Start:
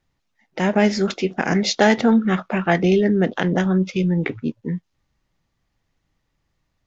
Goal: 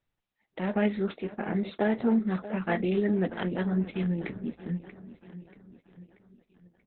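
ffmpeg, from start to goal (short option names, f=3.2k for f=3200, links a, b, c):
-filter_complex "[0:a]lowpass=4.7k,asplit=3[a][b][c];[a]afade=t=out:st=1.11:d=0.02[d];[b]highshelf=f=2.1k:g=-11.5,afade=t=in:st=1.11:d=0.02,afade=t=out:st=2.55:d=0.02[e];[c]afade=t=in:st=2.55:d=0.02[f];[d][e][f]amix=inputs=3:normalize=0,flanger=delay=8.7:depth=1.7:regen=-47:speed=1.4:shape=triangular,asettb=1/sr,asplit=3[g][h][i];[g]atrim=end=3.524[j];[h]atrim=start=3.52:end=4.61,asetpts=PTS-STARTPTS,afade=t=in:d=0.004:c=qsin,afade=t=out:st=1.086:d=0.004:c=qsin,aeval=exprs='val(0)+0.00158*(sin(2*PI*60*n/s)+sin(2*PI*2*60*n/s)/2+sin(2*PI*3*60*n/s)/3+sin(2*PI*4*60*n/s)/4+sin(2*PI*5*60*n/s)/5)':c=same[k];[i]atrim=start=4.606[l];[j][k]acrossfade=d=0.004:c1=hsin:c2=qsin[m];[m][l]acrossfade=d=0.004:c1=qsin:c2=hsin,aecho=1:1:634|1268|1902|2536|3170:0.188|0.0961|0.049|0.025|0.0127,volume=-5.5dB" -ar 48000 -c:a libopus -b:a 8k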